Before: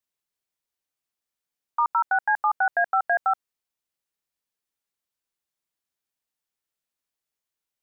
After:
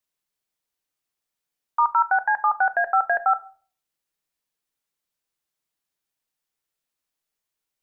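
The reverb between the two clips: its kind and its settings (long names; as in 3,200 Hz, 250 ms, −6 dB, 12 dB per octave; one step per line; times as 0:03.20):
rectangular room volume 360 cubic metres, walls furnished, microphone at 0.51 metres
level +2.5 dB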